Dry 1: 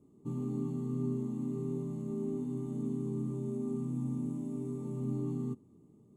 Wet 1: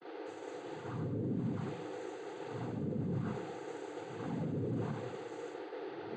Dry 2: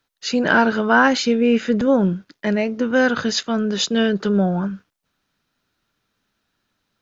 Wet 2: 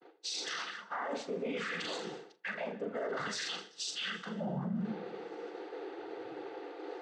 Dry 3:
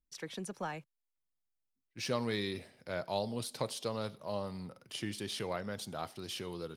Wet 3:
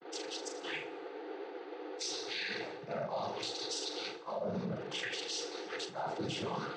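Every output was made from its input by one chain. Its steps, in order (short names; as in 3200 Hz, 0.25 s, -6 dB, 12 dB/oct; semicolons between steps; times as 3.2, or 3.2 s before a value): LFO high-pass sine 0.6 Hz 410–5100 Hz; resonant low shelf 210 Hz +13.5 dB, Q 3; on a send: flutter echo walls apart 7 m, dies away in 0.34 s; on the sum: buzz 400 Hz, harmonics 11, -54 dBFS -6 dB/oct; tilt -2.5 dB/oct; noise vocoder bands 16; reverse; compressor 16:1, threshold -39 dBFS; reverse; plate-style reverb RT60 1.5 s, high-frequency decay 0.75×, pre-delay 0.11 s, DRR 18.5 dB; limiter -37 dBFS; expander -50 dBFS; gain +8.5 dB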